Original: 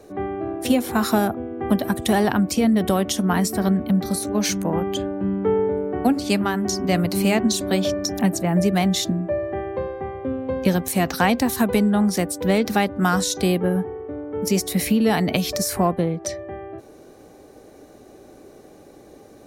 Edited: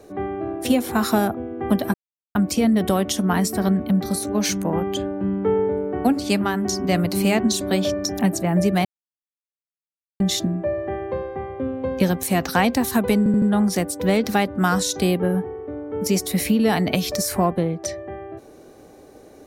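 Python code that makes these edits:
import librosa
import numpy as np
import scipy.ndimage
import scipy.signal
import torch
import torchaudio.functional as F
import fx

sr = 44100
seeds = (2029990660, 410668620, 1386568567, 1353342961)

y = fx.edit(x, sr, fx.silence(start_s=1.94, length_s=0.41),
    fx.insert_silence(at_s=8.85, length_s=1.35),
    fx.stutter(start_s=11.83, slice_s=0.08, count=4), tone=tone)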